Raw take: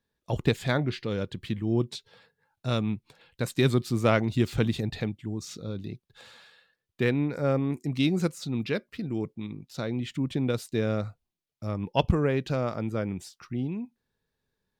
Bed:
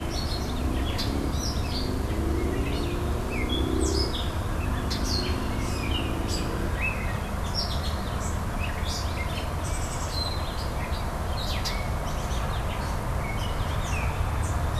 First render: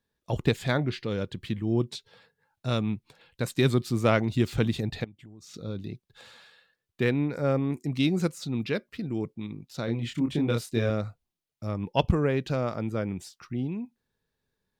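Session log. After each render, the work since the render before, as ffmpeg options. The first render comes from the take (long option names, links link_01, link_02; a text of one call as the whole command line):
ffmpeg -i in.wav -filter_complex "[0:a]asettb=1/sr,asplit=3[link_01][link_02][link_03];[link_01]atrim=end=5.044[link_04];[link_02]atrim=start=5.04:end=5.54,asetpts=PTS-STARTPTS,afade=type=in:duration=0.004:curve=qsin,afade=type=out:start_time=0.496:duration=0.004:curve=qsin,acompressor=threshold=-46dB:ratio=5:attack=3.2:release=140:knee=1:detection=peak[link_05];[link_03]atrim=start=5.536[link_06];[link_04][link_05]acrossfade=duration=0.004:curve1=hsin:curve2=qsin[link_07];[link_07][link_06]acrossfade=duration=0.004:curve1=qsin:curve2=hsin,asettb=1/sr,asplit=3[link_08][link_09][link_10];[link_08]atrim=end=9.854[link_11];[link_09]atrim=start=9.85:end=10.9,asetpts=PTS-STARTPTS,afade=type=in:duration=0.004:curve=qsin,afade=type=out:start_time=1.046:duration=0.004:curve=qsin,asplit=2[link_12][link_13];[link_13]adelay=26,volume=-3dB[link_14];[link_12][link_14]amix=inputs=2:normalize=0,atrim=end_sample=46305[link_15];[link_10]atrim=start=10.896[link_16];[link_11][link_15]acrossfade=duration=0.004:curve1=hsin:curve2=qsin[link_17];[link_17][link_16]acrossfade=duration=0.004:curve1=qsin:curve2=hsin" out.wav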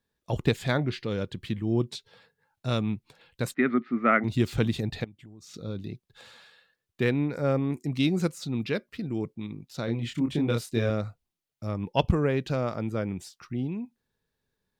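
ffmpeg -i in.wav -filter_complex "[0:a]asplit=3[link_01][link_02][link_03];[link_01]afade=type=out:start_time=3.53:duration=0.02[link_04];[link_02]highpass=frequency=230:width=0.5412,highpass=frequency=230:width=1.3066,equalizer=frequency=240:width_type=q:width=4:gain=7,equalizer=frequency=340:width_type=q:width=4:gain=-4,equalizer=frequency=500:width_type=q:width=4:gain=-6,equalizer=frequency=940:width_type=q:width=4:gain=-9,equalizer=frequency=1300:width_type=q:width=4:gain=9,equalizer=frequency=2000:width_type=q:width=4:gain=10,lowpass=frequency=2100:width=0.5412,lowpass=frequency=2100:width=1.3066,afade=type=in:start_time=3.53:duration=0.02,afade=type=out:start_time=4.23:duration=0.02[link_05];[link_03]afade=type=in:start_time=4.23:duration=0.02[link_06];[link_04][link_05][link_06]amix=inputs=3:normalize=0" out.wav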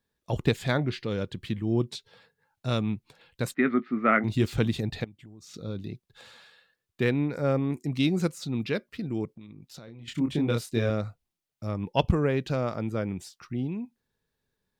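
ffmpeg -i in.wav -filter_complex "[0:a]asettb=1/sr,asplit=3[link_01][link_02][link_03];[link_01]atrim=end=3.624[link_04];[link_02]atrim=start=3.62:end=4.46,asetpts=PTS-STARTPTS,afade=type=in:duration=0.004:curve=qsin,afade=type=out:start_time=0.836:duration=0.004:curve=qsin,asplit=2[link_05][link_06];[link_06]adelay=19,volume=-12dB[link_07];[link_05][link_07]amix=inputs=2:normalize=0,atrim=end_sample=37044[link_08];[link_03]atrim=start=4.456[link_09];[link_04][link_08]acrossfade=duration=0.004:curve1=hsin:curve2=qsin[link_10];[link_10][link_09]acrossfade=duration=0.004:curve1=qsin:curve2=hsin,asettb=1/sr,asplit=3[link_11][link_12][link_13];[link_11]atrim=end=9.254[link_14];[link_12]atrim=start=9.25:end=10.08,asetpts=PTS-STARTPTS,afade=type=in:duration=0.004:curve=qsin,afade=type=out:start_time=0.826:duration=0.004:curve=qsin,acompressor=threshold=-41dB:ratio=16:attack=3.2:release=140:knee=1:detection=peak[link_15];[link_13]atrim=start=10.076[link_16];[link_14][link_15]acrossfade=duration=0.004:curve1=hsin:curve2=qsin[link_17];[link_17][link_16]acrossfade=duration=0.004:curve1=qsin:curve2=hsin" out.wav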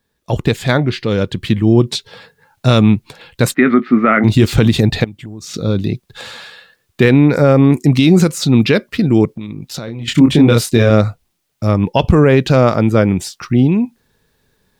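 ffmpeg -i in.wav -af "dynaudnorm=framelen=870:gausssize=3:maxgain=9dB,alimiter=level_in=11.5dB:limit=-1dB:release=50:level=0:latency=1" out.wav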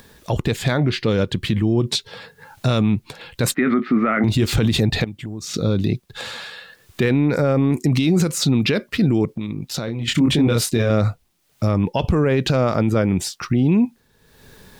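ffmpeg -i in.wav -af "alimiter=limit=-9.5dB:level=0:latency=1:release=47,acompressor=mode=upward:threshold=-31dB:ratio=2.5" out.wav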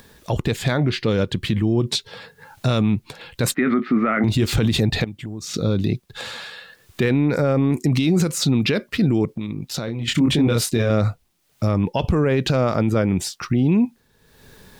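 ffmpeg -i in.wav -af "volume=-1dB" out.wav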